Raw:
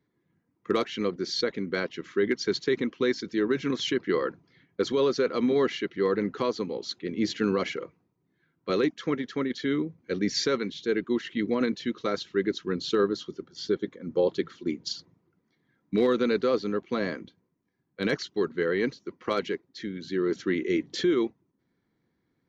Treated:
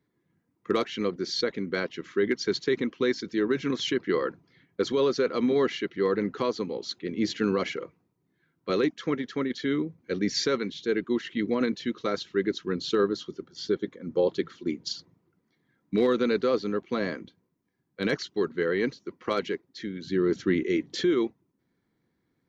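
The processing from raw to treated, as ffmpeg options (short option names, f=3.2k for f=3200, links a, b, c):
-filter_complex "[0:a]asettb=1/sr,asplit=3[a][b][c];[a]atrim=end=20.074[d];[b]atrim=start=20.07:end=20.63,asetpts=PTS-STARTPTS,afade=t=in:d=0.004:c=qsin,afade=t=out:st=0.556:d=0.004:c=qsin,lowshelf=f=160:g=11.5[e];[c]atrim=start=20.626[f];[d][e]acrossfade=d=0.004:c1=hsin:c2=qsin[g];[g][f]acrossfade=d=0.004:c1=qsin:c2=hsin"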